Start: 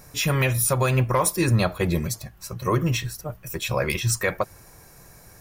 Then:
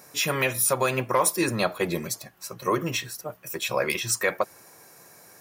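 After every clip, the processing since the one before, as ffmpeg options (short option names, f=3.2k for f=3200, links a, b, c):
-af "highpass=260"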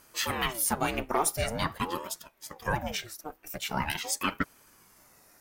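-filter_complex "[0:a]asplit=2[a][b];[b]aeval=exprs='sgn(val(0))*max(abs(val(0))-0.00794,0)':c=same,volume=-8dB[c];[a][c]amix=inputs=2:normalize=0,aeval=exprs='val(0)*sin(2*PI*470*n/s+470*0.7/0.45*sin(2*PI*0.45*n/s))':c=same,volume=-5dB"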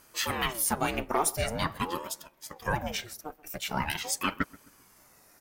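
-filter_complex "[0:a]asplit=2[a][b];[b]adelay=130,lowpass=f=1.2k:p=1,volume=-20.5dB,asplit=2[c][d];[d]adelay=130,lowpass=f=1.2k:p=1,volume=0.41,asplit=2[e][f];[f]adelay=130,lowpass=f=1.2k:p=1,volume=0.41[g];[a][c][e][g]amix=inputs=4:normalize=0"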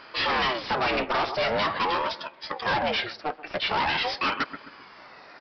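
-filter_complex "[0:a]asplit=2[a][b];[b]highpass=f=720:p=1,volume=24dB,asoftclip=type=tanh:threshold=-11.5dB[c];[a][c]amix=inputs=2:normalize=0,lowpass=f=3.4k:p=1,volume=-6dB,aresample=11025,asoftclip=type=hard:threshold=-22.5dB,aresample=44100"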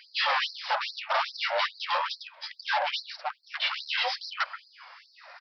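-af "afftfilt=real='re*gte(b*sr/1024,480*pow(4100/480,0.5+0.5*sin(2*PI*2.4*pts/sr)))':imag='im*gte(b*sr/1024,480*pow(4100/480,0.5+0.5*sin(2*PI*2.4*pts/sr)))':win_size=1024:overlap=0.75"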